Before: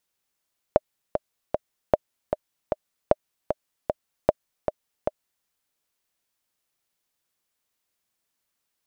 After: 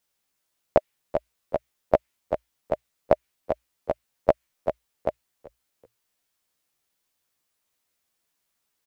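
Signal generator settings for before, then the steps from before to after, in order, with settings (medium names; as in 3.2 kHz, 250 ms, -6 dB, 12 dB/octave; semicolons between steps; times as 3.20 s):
metronome 153 bpm, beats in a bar 3, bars 4, 610 Hz, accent 7 dB -2.5 dBFS
doubling 14 ms -2 dB; dynamic bell 2.2 kHz, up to +7 dB, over -47 dBFS, Q 1.4; frequency-shifting echo 381 ms, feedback 30%, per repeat -58 Hz, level -20 dB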